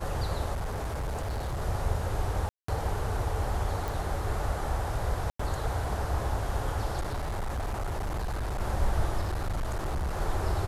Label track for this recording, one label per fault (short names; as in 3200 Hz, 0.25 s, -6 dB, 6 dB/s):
0.540000	1.620000	clipped -29 dBFS
2.490000	2.680000	gap 0.194 s
3.880000	3.880000	pop
5.300000	5.390000	gap 94 ms
7.000000	8.610000	clipped -28.5 dBFS
9.220000	10.210000	clipped -27 dBFS